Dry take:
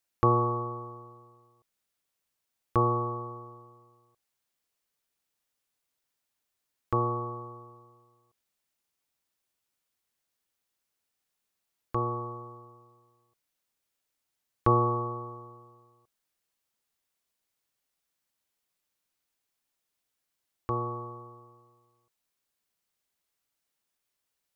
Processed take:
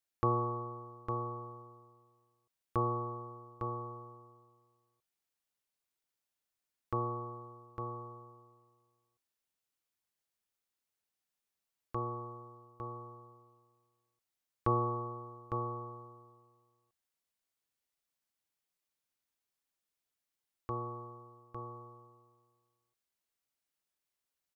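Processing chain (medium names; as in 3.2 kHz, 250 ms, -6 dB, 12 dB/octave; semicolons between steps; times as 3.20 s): delay 855 ms -6.5 dB; trim -7.5 dB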